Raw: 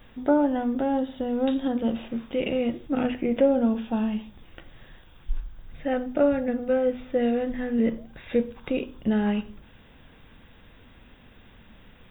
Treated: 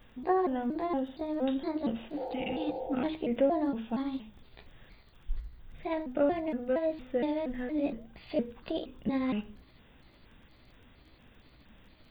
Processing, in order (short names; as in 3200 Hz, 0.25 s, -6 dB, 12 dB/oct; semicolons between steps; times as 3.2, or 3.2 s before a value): trilling pitch shifter +4 st, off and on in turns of 0.233 s; spectral repair 2.2–2.92, 340–930 Hz after; crackle 20/s -48 dBFS; gain -6 dB